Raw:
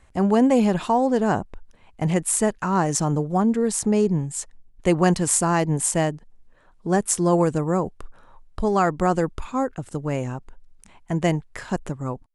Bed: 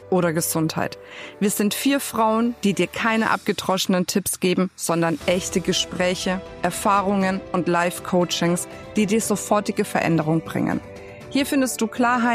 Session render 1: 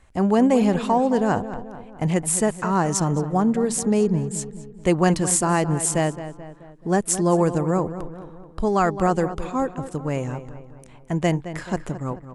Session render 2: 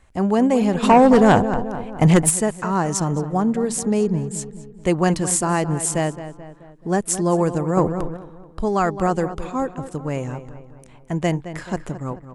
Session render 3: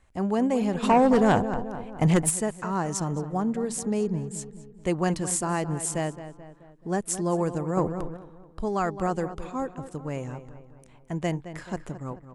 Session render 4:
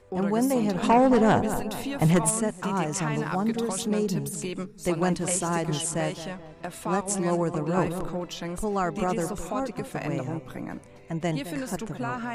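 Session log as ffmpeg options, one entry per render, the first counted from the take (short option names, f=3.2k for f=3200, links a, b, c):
-filter_complex "[0:a]asplit=2[a][b];[b]adelay=216,lowpass=f=2.8k:p=1,volume=-12dB,asplit=2[c][d];[d]adelay=216,lowpass=f=2.8k:p=1,volume=0.52,asplit=2[e][f];[f]adelay=216,lowpass=f=2.8k:p=1,volume=0.52,asplit=2[g][h];[h]adelay=216,lowpass=f=2.8k:p=1,volume=0.52,asplit=2[i][j];[j]adelay=216,lowpass=f=2.8k:p=1,volume=0.52[k];[a][c][e][g][i][k]amix=inputs=6:normalize=0"
-filter_complex "[0:a]asplit=3[a][b][c];[a]afade=t=out:st=0.82:d=0.02[d];[b]aeval=exprs='0.473*sin(PI/2*2*val(0)/0.473)':c=same,afade=t=in:st=0.82:d=0.02,afade=t=out:st=2.29:d=0.02[e];[c]afade=t=in:st=2.29:d=0.02[f];[d][e][f]amix=inputs=3:normalize=0,asettb=1/sr,asplit=3[g][h][i];[g]atrim=end=7.774[j];[h]atrim=start=7.77:end=8.17,asetpts=PTS-STARTPTS,afade=t=in:d=0.004:c=qsin,afade=t=out:st=0.396:d=0.004:c=qsin,acontrast=73[k];[i]atrim=start=8.166[l];[j][k]acrossfade=d=0.004:c1=hsin:c2=qsin[m];[m][l]acrossfade=d=0.004:c1=qsin:c2=hsin"
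-af "volume=-7dB"
-filter_complex "[1:a]volume=-13.5dB[a];[0:a][a]amix=inputs=2:normalize=0"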